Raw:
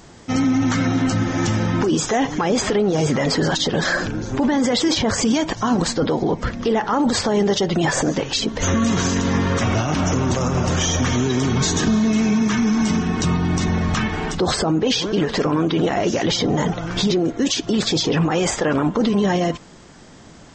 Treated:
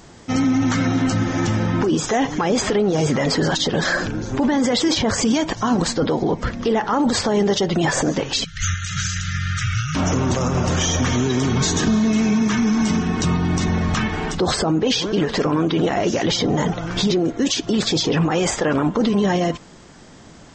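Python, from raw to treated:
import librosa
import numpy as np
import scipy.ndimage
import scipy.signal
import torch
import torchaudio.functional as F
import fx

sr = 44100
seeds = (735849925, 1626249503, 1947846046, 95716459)

y = fx.high_shelf(x, sr, hz=4100.0, db=-5.0, at=(1.4, 2.04))
y = fx.brickwall_bandstop(y, sr, low_hz=170.0, high_hz=1200.0, at=(8.44, 9.95))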